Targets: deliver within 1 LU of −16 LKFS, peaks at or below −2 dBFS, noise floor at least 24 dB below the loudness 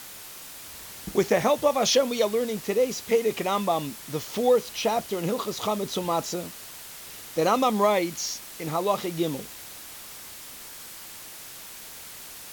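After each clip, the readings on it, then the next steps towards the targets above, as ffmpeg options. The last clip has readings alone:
background noise floor −42 dBFS; target noise floor −50 dBFS; integrated loudness −25.5 LKFS; sample peak −10.0 dBFS; target loudness −16.0 LKFS
→ -af "afftdn=noise_reduction=8:noise_floor=-42"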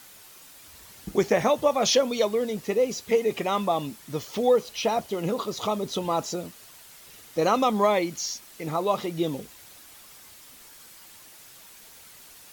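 background noise floor −49 dBFS; target noise floor −50 dBFS
→ -af "afftdn=noise_reduction=6:noise_floor=-49"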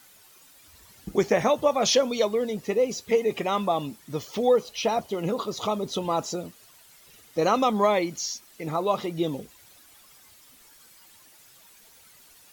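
background noise floor −54 dBFS; integrated loudness −26.0 LKFS; sample peak −10.0 dBFS; target loudness −16.0 LKFS
→ -af "volume=10dB,alimiter=limit=-2dB:level=0:latency=1"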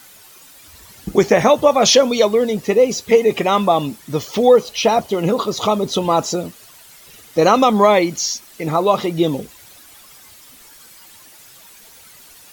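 integrated loudness −16.0 LKFS; sample peak −2.0 dBFS; background noise floor −44 dBFS

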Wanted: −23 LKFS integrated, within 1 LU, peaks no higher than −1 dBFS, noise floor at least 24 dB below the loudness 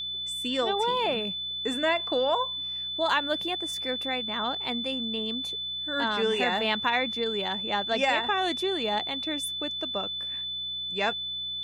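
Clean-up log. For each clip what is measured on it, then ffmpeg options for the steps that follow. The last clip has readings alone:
mains hum 60 Hz; hum harmonics up to 180 Hz; level of the hum −53 dBFS; interfering tone 3,500 Hz; level of the tone −31 dBFS; integrated loudness −27.5 LKFS; sample peak −11.5 dBFS; target loudness −23.0 LKFS
→ -af "bandreject=frequency=60:width_type=h:width=4,bandreject=frequency=120:width_type=h:width=4,bandreject=frequency=180:width_type=h:width=4"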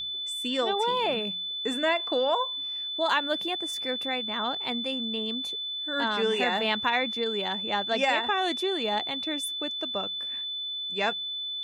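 mains hum none found; interfering tone 3,500 Hz; level of the tone −31 dBFS
→ -af "bandreject=frequency=3500:width=30"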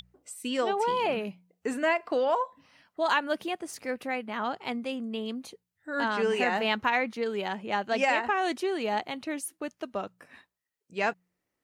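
interfering tone none found; integrated loudness −29.5 LKFS; sample peak −12.5 dBFS; target loudness −23.0 LKFS
→ -af "volume=6.5dB"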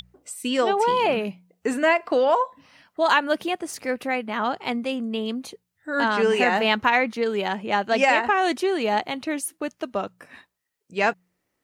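integrated loudness −23.0 LKFS; sample peak −6.0 dBFS; background noise floor −77 dBFS

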